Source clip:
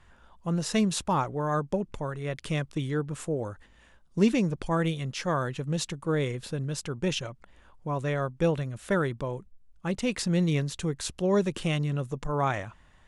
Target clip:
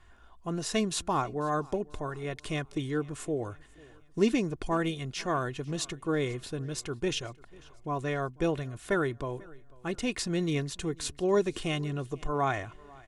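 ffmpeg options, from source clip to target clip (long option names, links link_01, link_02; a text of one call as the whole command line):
ffmpeg -i in.wav -filter_complex "[0:a]aecho=1:1:2.8:0.48,asplit=2[link_01][link_02];[link_02]aecho=0:1:494|988|1482:0.0631|0.0303|0.0145[link_03];[link_01][link_03]amix=inputs=2:normalize=0,volume=-2dB" out.wav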